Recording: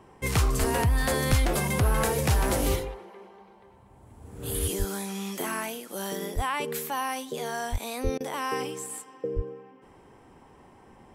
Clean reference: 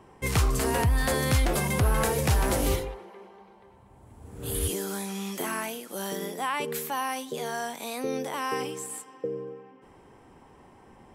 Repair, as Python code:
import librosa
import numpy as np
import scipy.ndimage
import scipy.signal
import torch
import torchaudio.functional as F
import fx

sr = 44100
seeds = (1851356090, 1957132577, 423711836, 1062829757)

y = fx.fix_deplosive(x, sr, at_s=(0.59, 1.29, 4.78, 6.35, 7.71, 8.03, 9.35))
y = fx.fix_interpolate(y, sr, at_s=(8.18,), length_ms=23.0)